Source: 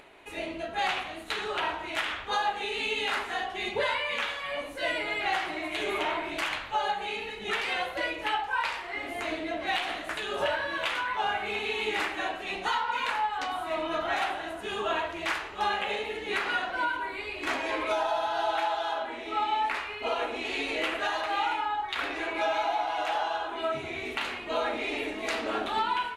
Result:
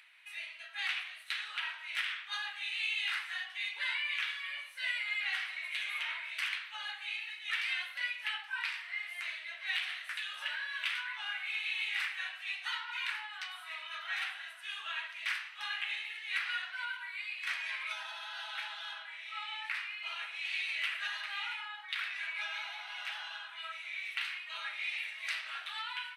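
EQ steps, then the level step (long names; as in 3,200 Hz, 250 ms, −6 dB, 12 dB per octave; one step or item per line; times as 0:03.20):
four-pole ladder high-pass 1,500 Hz, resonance 30%
notch filter 6,900 Hz, Q 5.8
+1.5 dB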